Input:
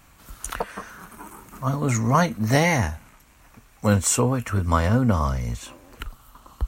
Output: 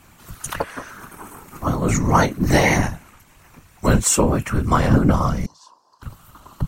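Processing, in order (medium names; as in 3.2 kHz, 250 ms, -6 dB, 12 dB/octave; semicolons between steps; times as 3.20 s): whisper effect; 5.46–6.03 s: two resonant band-passes 2.2 kHz, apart 2.3 oct; trim +3.5 dB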